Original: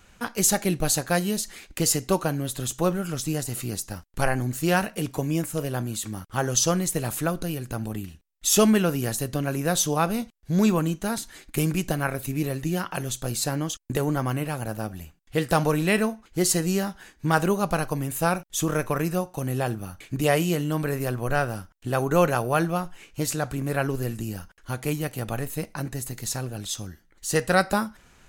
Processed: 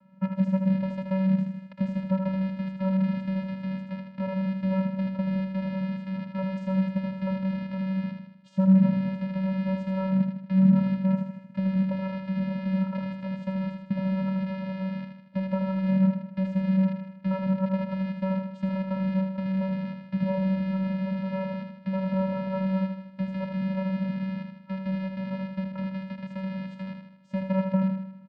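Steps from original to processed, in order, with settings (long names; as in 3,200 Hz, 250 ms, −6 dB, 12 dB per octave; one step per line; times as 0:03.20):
loose part that buzzes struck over −37 dBFS, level −11 dBFS
downward compressor, threshold −23 dBFS, peak gain reduction 9.5 dB
low-pass filter 1,300 Hz 12 dB per octave
on a send: repeating echo 78 ms, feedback 51%, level −6 dB
on the sum: channel vocoder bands 8, square 190 Hz
level +4 dB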